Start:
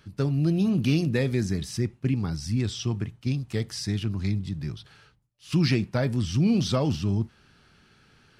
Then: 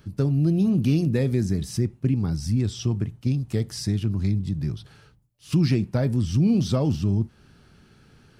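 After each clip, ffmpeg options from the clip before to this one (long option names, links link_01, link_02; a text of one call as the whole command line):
ffmpeg -i in.wav -filter_complex "[0:a]equalizer=frequency=2500:width=0.31:gain=-9,asplit=2[link_01][link_02];[link_02]acompressor=threshold=-31dB:ratio=6,volume=2.5dB[link_03];[link_01][link_03]amix=inputs=2:normalize=0" out.wav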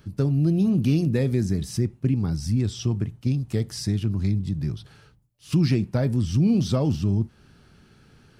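ffmpeg -i in.wav -af anull out.wav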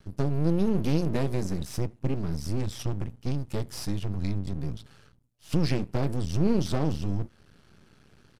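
ffmpeg -i in.wav -af "aeval=exprs='max(val(0),0)':channel_layout=same,aresample=32000,aresample=44100" out.wav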